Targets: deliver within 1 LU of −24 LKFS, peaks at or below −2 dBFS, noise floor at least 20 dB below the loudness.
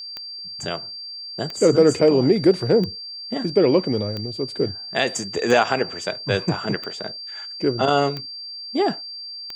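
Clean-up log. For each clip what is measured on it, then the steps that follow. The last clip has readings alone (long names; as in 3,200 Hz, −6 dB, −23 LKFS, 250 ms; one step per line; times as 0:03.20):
number of clicks 8; interfering tone 4,700 Hz; level of the tone −32 dBFS; integrated loudness −22.0 LKFS; sample peak −4.0 dBFS; target loudness −24.0 LKFS
→ click removal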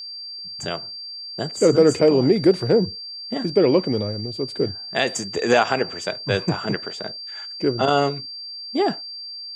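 number of clicks 0; interfering tone 4,700 Hz; level of the tone −32 dBFS
→ notch filter 4,700 Hz, Q 30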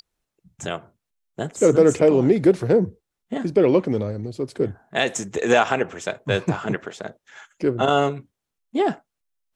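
interfering tone none found; integrated loudness −21.5 LKFS; sample peak −4.5 dBFS; target loudness −24.0 LKFS
→ level −2.5 dB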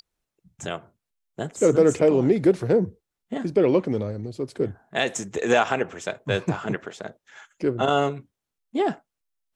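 integrated loudness −24.0 LKFS; sample peak −7.0 dBFS; background noise floor −85 dBFS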